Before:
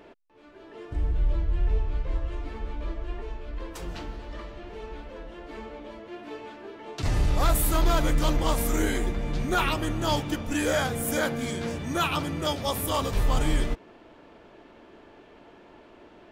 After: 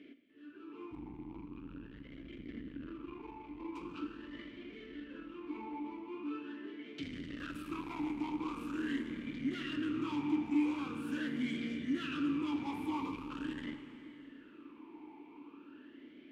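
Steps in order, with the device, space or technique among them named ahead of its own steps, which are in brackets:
0:02.38–0:02.87: low-shelf EQ 260 Hz +11 dB
talk box (tube saturation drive 33 dB, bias 0.45; formant filter swept between two vowels i-u 0.43 Hz)
dense smooth reverb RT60 2.8 s, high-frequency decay 0.95×, DRR 8 dB
level +9 dB

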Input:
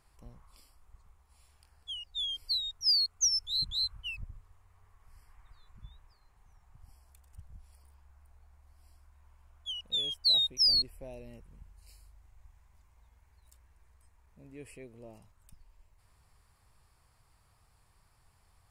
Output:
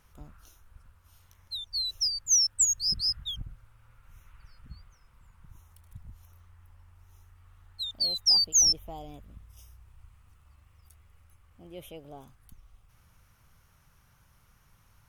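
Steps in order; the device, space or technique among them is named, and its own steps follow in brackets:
nightcore (speed change +24%)
level +4 dB

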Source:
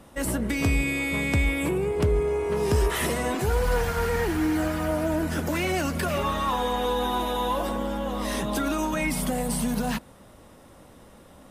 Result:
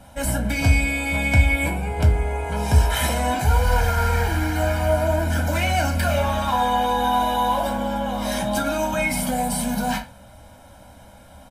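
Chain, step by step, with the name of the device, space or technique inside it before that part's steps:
microphone above a desk (comb filter 1.3 ms, depth 89%; convolution reverb RT60 0.30 s, pre-delay 3 ms, DRR 1.5 dB)

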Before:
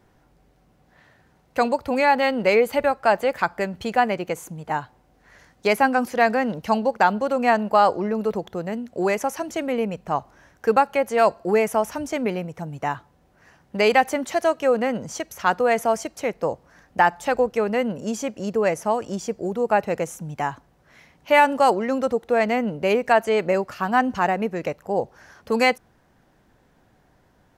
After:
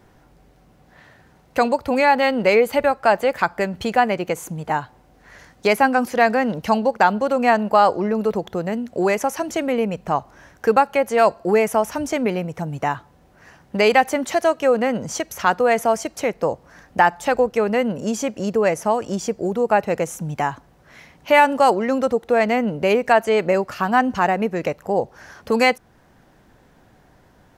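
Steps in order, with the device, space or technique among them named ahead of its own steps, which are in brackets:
parallel compression (in parallel at −1.5 dB: downward compressor, threshold −30 dBFS, peak gain reduction 17.5 dB)
on the sum: level +1 dB

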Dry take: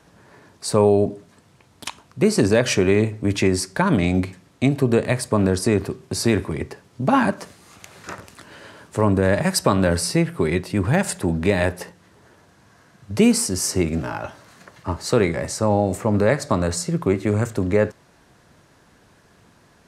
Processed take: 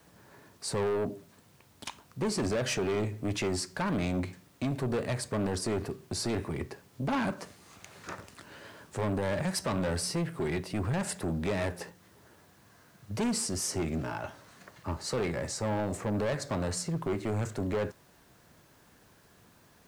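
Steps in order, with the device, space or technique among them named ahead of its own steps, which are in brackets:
compact cassette (soft clipping −19.5 dBFS, distortion −7 dB; low-pass filter 11,000 Hz; tape wow and flutter; white noise bed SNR 34 dB)
level −6.5 dB

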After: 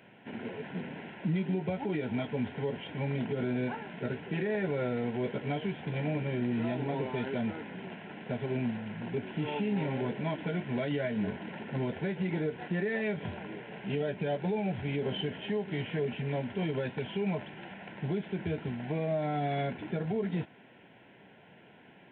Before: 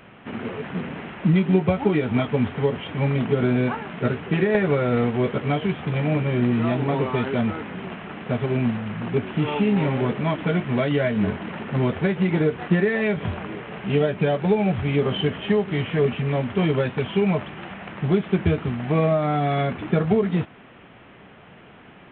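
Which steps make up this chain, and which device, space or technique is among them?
PA system with an anti-feedback notch (high-pass filter 120 Hz 12 dB per octave; Butterworth band-reject 1,200 Hz, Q 3.7; brickwall limiter −15 dBFS, peak gain reduction 8 dB)
level −8.5 dB

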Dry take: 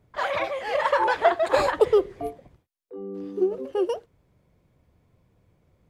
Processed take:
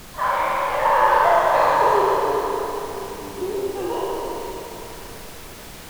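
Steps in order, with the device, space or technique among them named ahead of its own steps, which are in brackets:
peak hold with a decay on every bin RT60 2.01 s
horn gramophone (band-pass filter 240–3,500 Hz; parametric band 970 Hz +9 dB 0.45 octaves; tape wow and flutter; pink noise bed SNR 17 dB)
0:01.25–0:01.95: thirty-one-band graphic EQ 160 Hz +8 dB, 400 Hz −9 dB, 6,300 Hz +4 dB
four-comb reverb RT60 3.3 s, combs from 30 ms, DRR −0.5 dB
level −6 dB

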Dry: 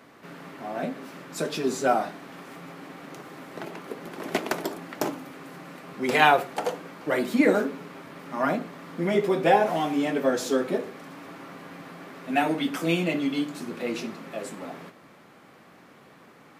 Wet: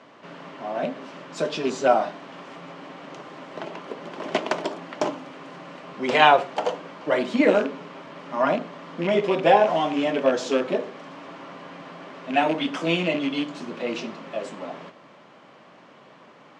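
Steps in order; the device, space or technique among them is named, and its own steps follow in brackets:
car door speaker with a rattle (loose part that buzzes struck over −30 dBFS, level −25 dBFS; loudspeaker in its box 110–6,800 Hz, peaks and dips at 600 Hz +7 dB, 1,000 Hz +6 dB, 3,000 Hz +6 dB)

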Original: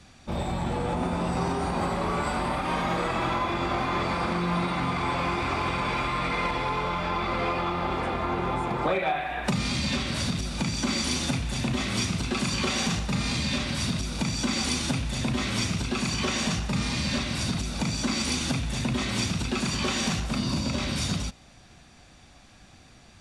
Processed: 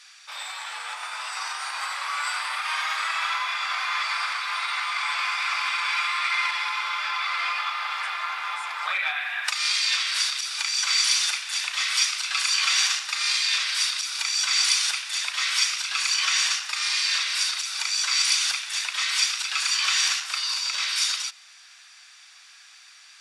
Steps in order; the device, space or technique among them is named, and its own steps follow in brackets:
headphones lying on a table (high-pass filter 1,300 Hz 24 dB per octave; parametric band 5,100 Hz +5 dB 0.3 octaves)
level +7 dB

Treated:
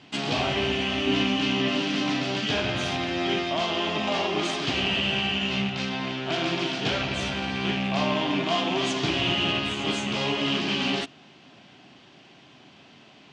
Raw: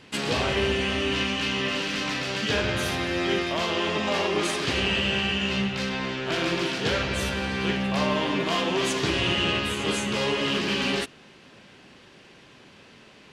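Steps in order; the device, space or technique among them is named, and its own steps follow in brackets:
car door speaker with a rattle (loose part that buzzes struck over −29 dBFS, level −21 dBFS; loudspeaker in its box 88–7,100 Hz, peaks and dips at 140 Hz +4 dB, 280 Hz +5 dB, 490 Hz −7 dB, 710 Hz +8 dB, 1,700 Hz −3 dB, 3,200 Hz +4 dB)
0:01.07–0:02.40: parametric band 300 Hz +6 dB 2 octaves
level −2 dB

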